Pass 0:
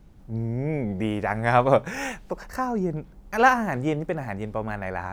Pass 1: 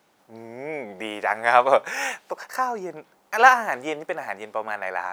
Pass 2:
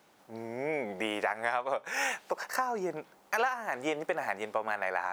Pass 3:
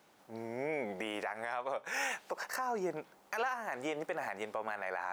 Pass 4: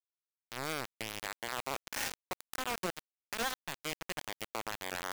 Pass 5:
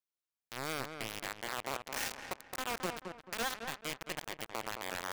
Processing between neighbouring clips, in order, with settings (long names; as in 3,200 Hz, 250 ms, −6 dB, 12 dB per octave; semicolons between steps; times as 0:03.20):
high-pass filter 640 Hz 12 dB per octave; level +5 dB
downward compressor 20 to 1, threshold −26 dBFS, peak gain reduction 19.5 dB
brickwall limiter −23.5 dBFS, peak gain reduction 8.5 dB; level −2 dB
bit reduction 5 bits; level −1.5 dB
feedback echo with a low-pass in the loop 218 ms, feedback 34%, low-pass 2,400 Hz, level −6.5 dB; level −1 dB